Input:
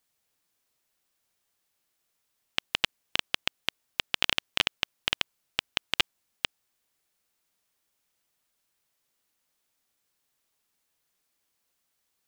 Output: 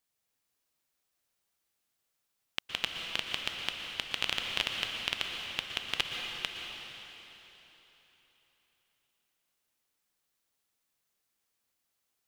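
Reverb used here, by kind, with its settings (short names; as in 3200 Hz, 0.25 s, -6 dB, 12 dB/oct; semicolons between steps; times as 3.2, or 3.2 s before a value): plate-style reverb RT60 3.7 s, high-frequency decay 0.95×, pre-delay 0.105 s, DRR 1.5 dB; gain -6 dB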